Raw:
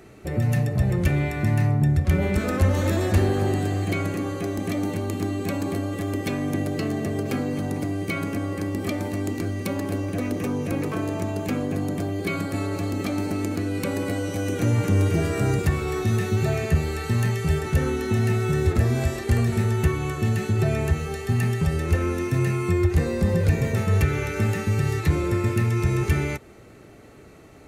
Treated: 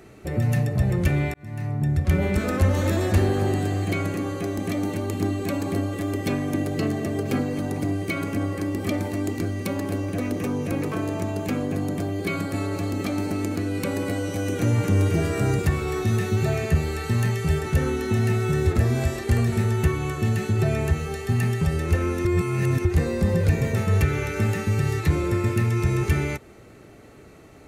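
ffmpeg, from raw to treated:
-filter_complex "[0:a]asplit=3[a][b][c];[a]afade=t=out:st=4.88:d=0.02[d];[b]aphaser=in_gain=1:out_gain=1:delay=3.4:decay=0.25:speed=1.9:type=sinusoidal,afade=t=in:st=4.88:d=0.02,afade=t=out:st=9.44:d=0.02[e];[c]afade=t=in:st=9.44:d=0.02[f];[d][e][f]amix=inputs=3:normalize=0,asplit=4[g][h][i][j];[g]atrim=end=1.34,asetpts=PTS-STARTPTS,afade=t=out:st=1.336:d=0.004:c=hsin[k];[h]atrim=start=1.34:end=22.252,asetpts=PTS-STARTPTS,afade=t=in:d=0.76[l];[i]atrim=start=22.248:end=22.852,asetpts=PTS-STARTPTS,areverse[m];[j]atrim=start=22.848[n];[k][l]concat=n=2:v=0:a=1[o];[o][m]acrossfade=d=0.004:c1=hsin:c2=hsin[p];[p][n]acrossfade=d=0.004:c1=hsin:c2=hsin"

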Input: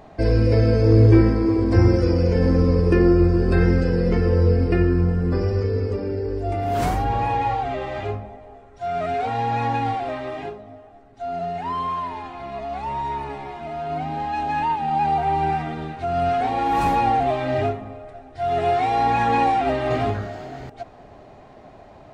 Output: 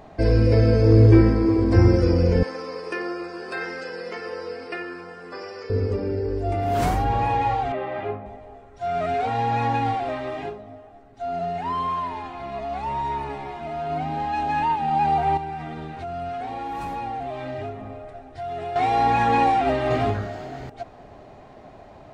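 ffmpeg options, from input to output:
-filter_complex "[0:a]asettb=1/sr,asplit=3[a][b][c];[a]atrim=end=2.434[d];[b]atrim=start=2.43:end=5.7,asetpts=PTS-STARTPTS,afade=t=in:d=0.004:c=qsin,afade=t=out:st=3.266:d=0.004:c=qsin,highpass=810[e];[c]atrim=start=5.696[f];[d][e]acrossfade=d=0.004:c1=hsin:c2=qsin[g];[g][f]acrossfade=d=0.004:c1=qsin:c2=hsin,asettb=1/sr,asplit=3[h][i][j];[h]atrim=end=7.724[k];[i]atrim=start=7.72:end=8.26,asetpts=PTS-STARTPTS,afade=t=in:d=0.004:c=qsin,afade=t=out:st=0.536:d=0.004:c=qsin,highpass=160,lowpass=2.4k[l];[j]atrim=start=8.256[m];[k][l]acrossfade=d=0.004:c1=hsin:c2=qsin[n];[n][m]acrossfade=d=0.004:c1=qsin:c2=hsin,asettb=1/sr,asplit=3[o][p][q];[o]atrim=end=15.374[r];[p]atrim=start=15.37:end=18.76,asetpts=PTS-STARTPTS,afade=t=in:d=0.004:c=qsin,afade=t=out:st=3.386:d=0.004:c=qsin,acompressor=threshold=-31dB:ratio=3:attack=3.2:release=140:knee=1:detection=peak[s];[q]atrim=start=18.756[t];[r][s]acrossfade=d=0.004:c1=hsin:c2=qsin[u];[u][t]acrossfade=d=0.004:c1=qsin:c2=hsin"

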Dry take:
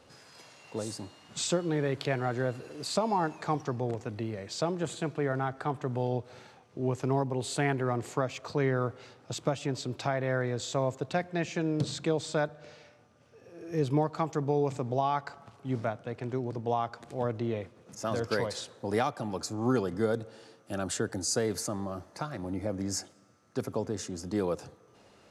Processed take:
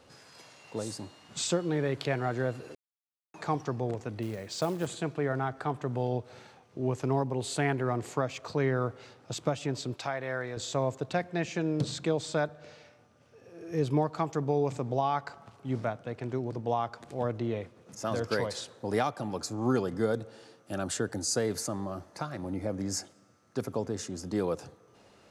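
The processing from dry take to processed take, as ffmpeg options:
-filter_complex "[0:a]asettb=1/sr,asplit=3[a][b][c];[a]atrim=end=4.224[d];[b]atrim=start=4.22:end=4.87,asetpts=PTS-STARTPTS,afade=t=in:d=0.004:c=qsin,afade=t=out:st=0.646:d=0.004:c=qsin,acrusher=bits=5:mode=log:mix=0:aa=0.000001[e];[c]atrim=start=4.866[f];[d][e]acrossfade=d=0.004:c1=hsin:c2=qsin[g];[g][f]acrossfade=d=0.004:c1=qsin:c2=hsin,asettb=1/sr,asplit=3[h][i][j];[h]atrim=end=9.944[k];[i]atrim=start=9.94:end=10.57,asetpts=PTS-STARTPTS,afade=t=in:d=0.004:c=qsin,afade=t=out:st=0.626:d=0.004:c=qsin,lowshelf=f=450:g=-10[l];[j]atrim=start=10.566[m];[k][l]acrossfade=d=0.004:c1=hsin:c2=qsin[n];[n][m]acrossfade=d=0.004:c1=qsin:c2=hsin,asplit=3[o][p][q];[o]atrim=end=2.75,asetpts=PTS-STARTPTS,afade=t=out:st=2.746:d=0.004:c=hsin[r];[p]atrim=start=2.75:end=3.34,asetpts=PTS-STARTPTS,volume=0[s];[q]atrim=start=3.34,asetpts=PTS-STARTPTS,afade=t=in:d=0.004:c=hsin[t];[r][s][t]concat=n=3:v=0:a=1"

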